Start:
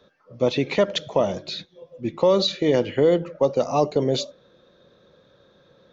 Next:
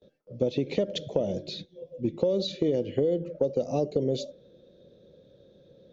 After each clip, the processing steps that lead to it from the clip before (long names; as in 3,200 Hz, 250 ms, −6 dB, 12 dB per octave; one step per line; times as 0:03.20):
drawn EQ curve 540 Hz 0 dB, 1,100 Hz −22 dB, 3,100 Hz −8 dB
downward compressor 6 to 1, threshold −24 dBFS, peak gain reduction 10 dB
noise gate with hold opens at −52 dBFS
level +1.5 dB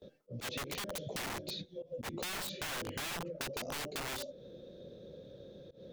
wrap-around overflow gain 28 dB
volume swells 124 ms
downward compressor 6 to 1, threshold −43 dBFS, peak gain reduction 11.5 dB
level +4.5 dB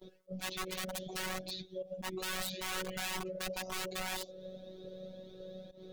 brickwall limiter −36.5 dBFS, peak gain reduction 6.5 dB
phases set to zero 186 Hz
flanger whose copies keep moving one way rising 1.9 Hz
level +10 dB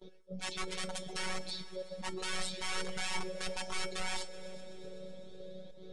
tuned comb filter 450 Hz, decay 0.18 s, harmonics all, mix 80%
echo machine with several playback heads 126 ms, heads all three, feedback 59%, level −22.5 dB
downsampling to 22,050 Hz
level +11.5 dB